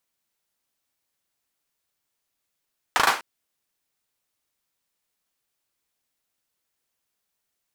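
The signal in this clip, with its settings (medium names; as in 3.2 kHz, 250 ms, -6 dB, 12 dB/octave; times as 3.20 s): hand clap length 0.25 s, bursts 4, apart 37 ms, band 1.1 kHz, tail 0.32 s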